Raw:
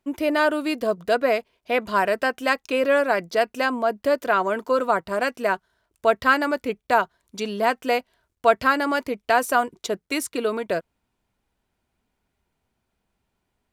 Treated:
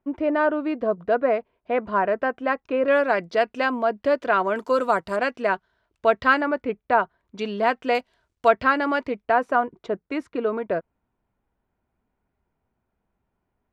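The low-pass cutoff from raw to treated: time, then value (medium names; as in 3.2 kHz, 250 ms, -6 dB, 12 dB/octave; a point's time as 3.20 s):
1.5 kHz
from 2.88 s 3.6 kHz
from 4.56 s 9.5 kHz
from 5.16 s 3.8 kHz
from 6.41 s 2 kHz
from 7.39 s 3.5 kHz
from 7.95 s 7.4 kHz
from 8.48 s 3.1 kHz
from 9.22 s 1.6 kHz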